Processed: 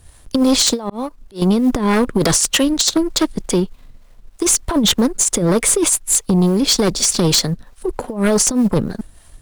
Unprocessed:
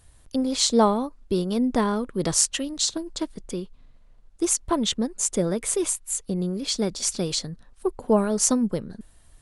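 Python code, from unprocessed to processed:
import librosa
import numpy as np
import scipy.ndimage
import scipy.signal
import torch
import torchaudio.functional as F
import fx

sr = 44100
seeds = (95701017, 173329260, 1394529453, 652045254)

y = fx.law_mismatch(x, sr, coded='A')
y = fx.harmonic_tremolo(y, sr, hz=3.3, depth_pct=50, crossover_hz=420.0)
y = fx.over_compress(y, sr, threshold_db=-28.0, ratio=-0.5)
y = fx.auto_swell(y, sr, attack_ms=440.0, at=(0.81, 1.42))
y = fx.fold_sine(y, sr, drive_db=13, ceiling_db=-9.0)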